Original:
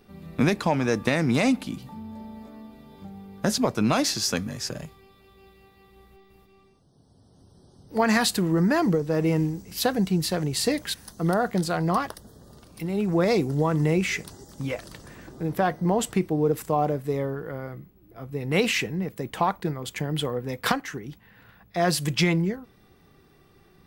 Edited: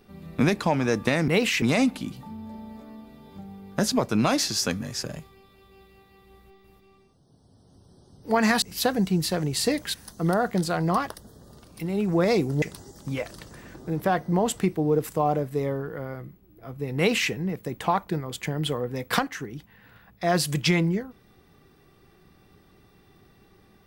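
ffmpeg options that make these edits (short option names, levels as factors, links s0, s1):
-filter_complex "[0:a]asplit=5[s0][s1][s2][s3][s4];[s0]atrim=end=1.282[s5];[s1]atrim=start=18.498:end=18.842[s6];[s2]atrim=start=1.278:end=8.282[s7];[s3]atrim=start=9.618:end=13.622[s8];[s4]atrim=start=14.148[s9];[s5][s6]acrossfade=d=0.004:c1=hsin:c2=hsin[s10];[s10][s7]acrossfade=d=0.004:c1=hsin:c2=hsin[s11];[s11][s8]acrossfade=d=0.004:c1=hsin:c2=hsin[s12];[s12][s9]acrossfade=d=0.004:c1=hsin:c2=hsin"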